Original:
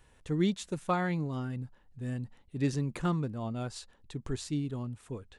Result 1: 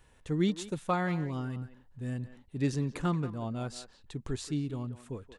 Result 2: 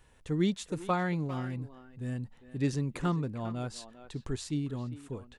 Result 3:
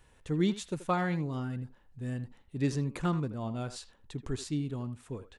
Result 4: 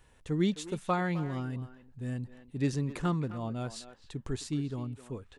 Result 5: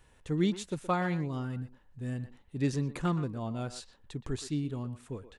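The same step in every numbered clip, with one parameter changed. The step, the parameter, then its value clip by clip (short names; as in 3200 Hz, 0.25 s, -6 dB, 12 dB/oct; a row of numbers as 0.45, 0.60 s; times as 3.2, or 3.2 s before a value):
speakerphone echo, time: 180, 400, 80, 260, 120 ms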